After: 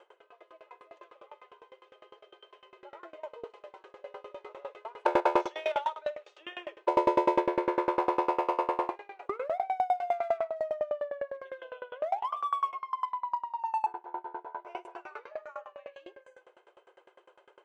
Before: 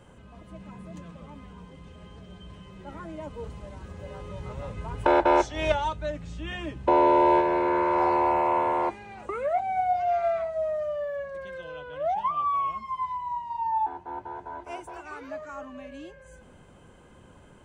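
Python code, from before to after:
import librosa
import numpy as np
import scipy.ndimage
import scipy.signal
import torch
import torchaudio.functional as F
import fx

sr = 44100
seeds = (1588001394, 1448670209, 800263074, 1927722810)

p1 = scipy.signal.sosfilt(scipy.signal.butter(2, 3500.0, 'lowpass', fs=sr, output='sos'), x)
p2 = fx.peak_eq(p1, sr, hz=1700.0, db=-2.5, octaves=0.28)
p3 = np.clip(p2, -10.0 ** (-27.0 / 20.0), 10.0 ** (-27.0 / 20.0))
p4 = p2 + (p3 * librosa.db_to_amplitude(-5.5))
p5 = fx.brickwall_highpass(p4, sr, low_hz=340.0)
p6 = fx.echo_feedback(p5, sr, ms=62, feedback_pct=24, wet_db=-10.0)
y = fx.tremolo_decay(p6, sr, direction='decaying', hz=9.9, depth_db=25)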